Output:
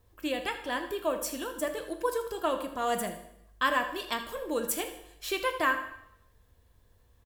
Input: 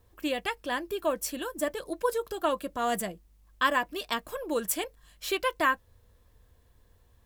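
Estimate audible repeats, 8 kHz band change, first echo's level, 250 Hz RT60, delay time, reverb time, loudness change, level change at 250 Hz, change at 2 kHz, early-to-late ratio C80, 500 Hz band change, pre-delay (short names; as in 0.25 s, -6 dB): 1, -1.0 dB, -14.5 dB, 0.80 s, 80 ms, 0.80 s, -1.0 dB, -1.0 dB, -0.5 dB, 10.5 dB, -1.0 dB, 8 ms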